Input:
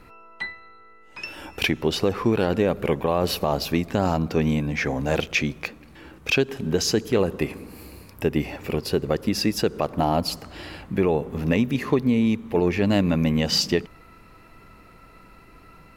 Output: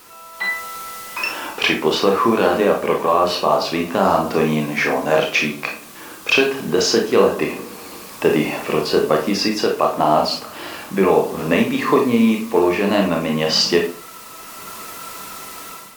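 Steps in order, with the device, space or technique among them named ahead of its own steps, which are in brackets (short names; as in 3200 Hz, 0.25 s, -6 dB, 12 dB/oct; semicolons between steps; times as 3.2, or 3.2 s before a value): filmed off a television (BPF 280–6500 Hz; bell 1100 Hz +8 dB 0.51 oct; reverb RT60 0.40 s, pre-delay 25 ms, DRR 1 dB; white noise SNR 22 dB; AGC; gain -1 dB; AAC 96 kbps 48000 Hz)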